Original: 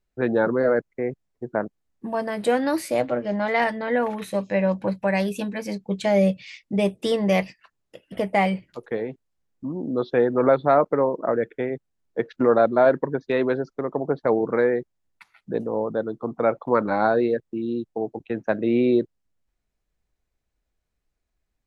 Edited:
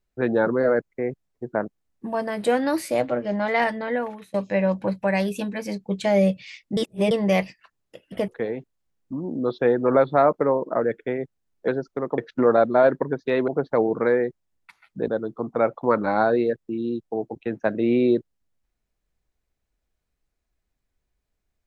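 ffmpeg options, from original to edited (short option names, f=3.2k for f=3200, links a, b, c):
-filter_complex "[0:a]asplit=9[a][b][c][d][e][f][g][h][i];[a]atrim=end=4.34,asetpts=PTS-STARTPTS,afade=t=out:st=3.78:d=0.56:silence=0.0794328[j];[b]atrim=start=4.34:end=6.772,asetpts=PTS-STARTPTS,afade=t=in:d=0.004:c=hsin:silence=0.0794328[k];[c]atrim=start=6.768:end=7.112,asetpts=PTS-STARTPTS,areverse[l];[d]atrim=start=7.108:end=8.282[m];[e]atrim=start=8.798:end=12.202[n];[f]atrim=start=13.498:end=14.002[o];[g]atrim=start=12.198:end=13.502[p];[h]atrim=start=13.998:end=15.602[q];[i]atrim=start=15.918[r];[j][k]concat=n=2:v=0:a=1[s];[s][l]acrossfade=d=0.004:c1=hsin:c2=hsin[t];[t][m]acrossfade=d=0.004:c1=hsin:c2=hsin[u];[u][n]acrossfade=d=0.004:c1=hsin:c2=hsin[v];[v][o]acrossfade=d=0.004:c1=hsin:c2=hsin[w];[w][p]acrossfade=d=0.004:c1=hsin:c2=hsin[x];[x][q]acrossfade=d=0.004:c1=hsin:c2=hsin[y];[y][r]acrossfade=d=0.004:c1=hsin:c2=hsin"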